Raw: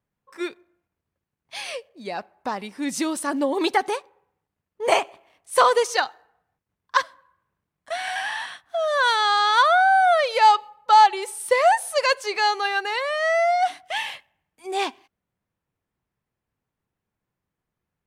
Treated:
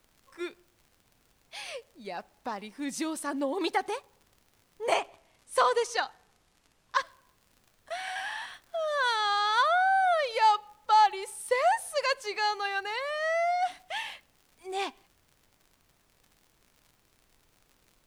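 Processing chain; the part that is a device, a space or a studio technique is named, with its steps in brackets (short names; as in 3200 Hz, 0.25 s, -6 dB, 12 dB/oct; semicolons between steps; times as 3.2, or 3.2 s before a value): vinyl LP (wow and flutter 14 cents; crackle 75/s -39 dBFS; pink noise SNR 37 dB); 4.94–7.01 LPF 11000 Hz 12 dB/oct; gain -7.5 dB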